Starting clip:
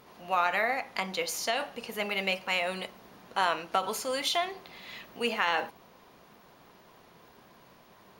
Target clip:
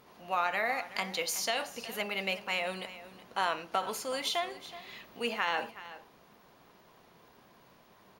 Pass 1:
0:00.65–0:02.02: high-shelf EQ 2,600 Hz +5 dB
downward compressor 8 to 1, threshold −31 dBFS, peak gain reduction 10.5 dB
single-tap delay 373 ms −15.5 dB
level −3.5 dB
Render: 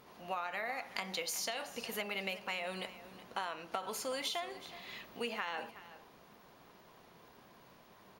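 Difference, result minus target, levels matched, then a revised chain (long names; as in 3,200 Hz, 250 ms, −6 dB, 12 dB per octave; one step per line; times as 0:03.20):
downward compressor: peak gain reduction +10.5 dB
0:00.65–0:02.02: high-shelf EQ 2,600 Hz +5 dB
single-tap delay 373 ms −15.5 dB
level −3.5 dB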